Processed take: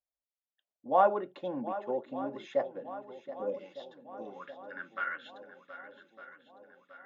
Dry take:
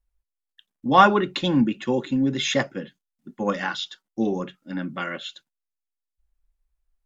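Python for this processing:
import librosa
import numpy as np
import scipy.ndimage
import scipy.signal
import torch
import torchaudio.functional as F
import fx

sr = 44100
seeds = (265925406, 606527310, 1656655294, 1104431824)

y = fx.spec_box(x, sr, start_s=3.11, length_s=0.7, low_hz=600.0, high_hz=2000.0, gain_db=-29)
y = fx.filter_sweep_bandpass(y, sr, from_hz=630.0, to_hz=1500.0, start_s=3.53, end_s=4.44, q=3.8)
y = fx.echo_swing(y, sr, ms=1206, ratio=1.5, feedback_pct=52, wet_db=-13.5)
y = y * 10.0 ** (-1.0 / 20.0)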